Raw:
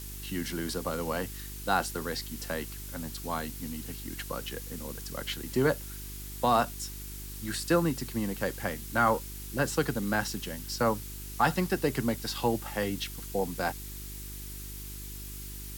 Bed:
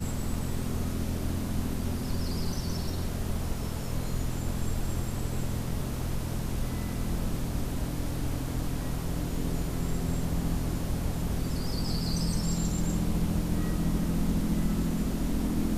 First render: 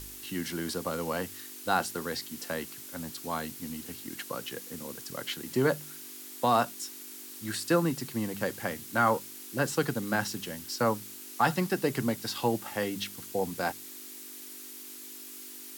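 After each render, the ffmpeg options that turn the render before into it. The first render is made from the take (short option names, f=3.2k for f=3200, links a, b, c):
-af "bandreject=f=50:t=h:w=4,bandreject=f=100:t=h:w=4,bandreject=f=150:t=h:w=4,bandreject=f=200:t=h:w=4"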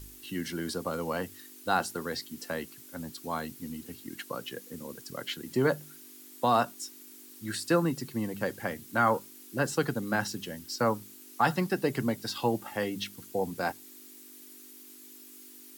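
-af "afftdn=nr=8:nf=-45"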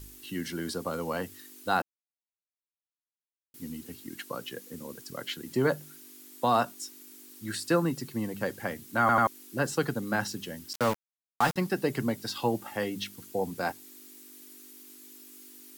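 -filter_complex "[0:a]asettb=1/sr,asplit=3[a][b][c];[a]atrim=end=10.734[d];[b]atrim=start=10.73:end=11.56,asetpts=PTS-STARTPTS,afade=t=in:d=0.004:c=qsin,afade=t=out:st=0.826:d=0.004:c=qsin,aeval=exprs='val(0)*gte(abs(val(0)),0.0376)':c=same[e];[c]atrim=start=11.556[f];[d][e]acrossfade=d=0.004:c1=hsin:c2=qsin[g];[g][f]acrossfade=d=0.004:c1=qsin:c2=hsin,asplit=6[h][i][j][k][l][m];[h]atrim=end=1.82,asetpts=PTS-STARTPTS,afade=t=out:st=1.816:d=0.004:c=hsin[n];[i]atrim=start=1.82:end=3.54,asetpts=PTS-STARTPTS,volume=0[o];[j]atrim=start=3.54:end=9.092,asetpts=PTS-STARTPTS,afade=t=in:d=0.004:c=hsin[p];[k]atrim=start=8.998:end=9.092[q];[l]atrim=start=8.998:end=9.092[r];[m]atrim=start=9.268[s];[n][o][p]concat=n=3:v=0:a=1[t];[t][q]acrossfade=d=0.004:c1=hsin:c2=hsin[u];[u][r]acrossfade=d=0.004:c1=hsin:c2=hsin[v];[v][s]acrossfade=d=0.004:c1=hsin:c2=hsin"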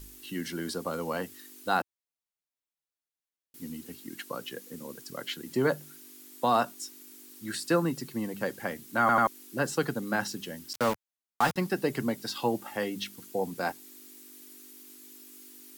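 -af "equalizer=f=98:t=o:w=0.59:g=-8.5"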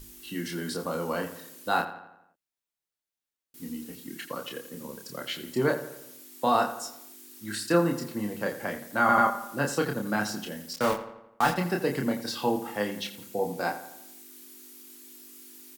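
-filter_complex "[0:a]asplit=2[a][b];[b]adelay=29,volume=-4dB[c];[a][c]amix=inputs=2:normalize=0,asplit=2[d][e];[e]adelay=85,lowpass=f=3.9k:p=1,volume=-12dB,asplit=2[f][g];[g]adelay=85,lowpass=f=3.9k:p=1,volume=0.53,asplit=2[h][i];[i]adelay=85,lowpass=f=3.9k:p=1,volume=0.53,asplit=2[j][k];[k]adelay=85,lowpass=f=3.9k:p=1,volume=0.53,asplit=2[l][m];[m]adelay=85,lowpass=f=3.9k:p=1,volume=0.53,asplit=2[n][o];[o]adelay=85,lowpass=f=3.9k:p=1,volume=0.53[p];[d][f][h][j][l][n][p]amix=inputs=7:normalize=0"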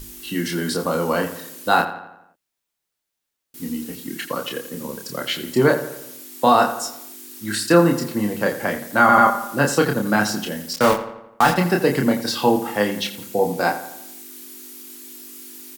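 -af "volume=9.5dB,alimiter=limit=-3dB:level=0:latency=1"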